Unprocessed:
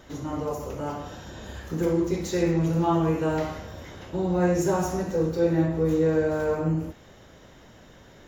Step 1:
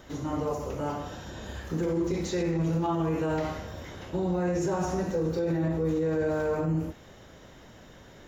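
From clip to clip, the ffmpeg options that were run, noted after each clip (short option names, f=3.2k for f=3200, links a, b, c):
-filter_complex "[0:a]acrossover=split=7400[a][b];[b]acompressor=threshold=-60dB:ratio=4:attack=1:release=60[c];[a][c]amix=inputs=2:normalize=0,alimiter=limit=-20.5dB:level=0:latency=1:release=37"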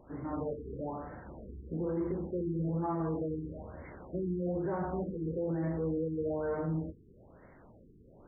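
-af "bandreject=f=50:t=h:w=6,bandreject=f=100:t=h:w=6,bandreject=f=150:t=h:w=6,afftfilt=real='re*lt(b*sr/1024,450*pow(2300/450,0.5+0.5*sin(2*PI*1.1*pts/sr)))':imag='im*lt(b*sr/1024,450*pow(2300/450,0.5+0.5*sin(2*PI*1.1*pts/sr)))':win_size=1024:overlap=0.75,volume=-5.5dB"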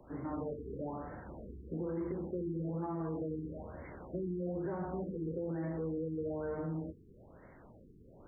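-filter_complex "[0:a]acrossover=split=160|400|1300[a][b][c][d];[a]acompressor=threshold=-48dB:ratio=4[e];[b]acompressor=threshold=-39dB:ratio=4[f];[c]acompressor=threshold=-43dB:ratio=4[g];[d]acompressor=threshold=-55dB:ratio=4[h];[e][f][g][h]amix=inputs=4:normalize=0"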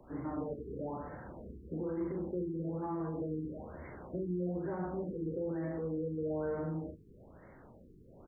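-filter_complex "[0:a]asplit=2[a][b];[b]adelay=39,volume=-7dB[c];[a][c]amix=inputs=2:normalize=0"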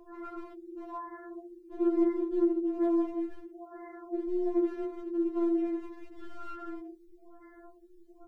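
-af "aeval=exprs='clip(val(0),-1,0.0188)':c=same,afftfilt=real='re*4*eq(mod(b,16),0)':imag='im*4*eq(mod(b,16),0)':win_size=2048:overlap=0.75,volume=6.5dB"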